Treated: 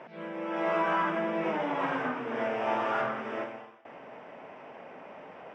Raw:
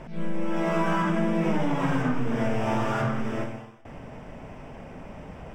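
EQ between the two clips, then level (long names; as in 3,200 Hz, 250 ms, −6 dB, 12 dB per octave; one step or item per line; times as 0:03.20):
band-pass filter 430–3,000 Hz
0.0 dB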